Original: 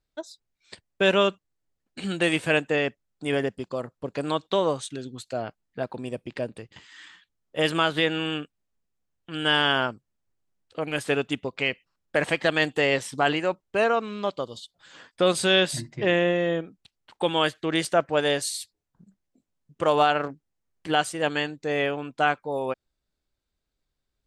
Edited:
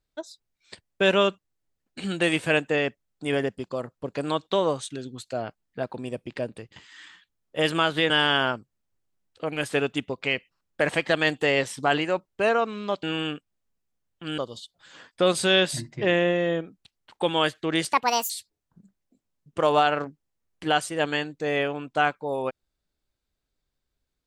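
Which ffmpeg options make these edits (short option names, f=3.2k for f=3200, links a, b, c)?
-filter_complex "[0:a]asplit=6[a][b][c][d][e][f];[a]atrim=end=8.102[g];[b]atrim=start=9.448:end=14.382[h];[c]atrim=start=8.098:end=9.452[i];[d]atrim=start=14.378:end=17.934[j];[e]atrim=start=17.93:end=18.53,asetpts=PTS-STARTPTS,asetrate=71883,aresample=44100,atrim=end_sample=16233,asetpts=PTS-STARTPTS[k];[f]atrim=start=18.526[l];[g][h]acrossfade=d=0.004:c1=hsin:c2=hsin[m];[m][i]acrossfade=d=0.004:c1=hsin:c2=hsin[n];[n][j]acrossfade=d=0.004:c1=hsin:c2=hsin[o];[o][k]acrossfade=d=0.004:c1=hsin:c2=hsin[p];[p][l]acrossfade=d=0.004:c1=hsin:c2=hsin"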